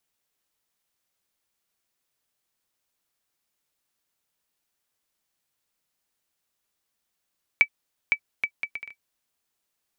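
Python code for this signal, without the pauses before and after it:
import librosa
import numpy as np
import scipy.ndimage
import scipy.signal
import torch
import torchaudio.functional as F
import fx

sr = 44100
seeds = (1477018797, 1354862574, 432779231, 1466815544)

y = fx.bouncing_ball(sr, first_gap_s=0.51, ratio=0.62, hz=2300.0, decay_ms=73.0, level_db=-6.0)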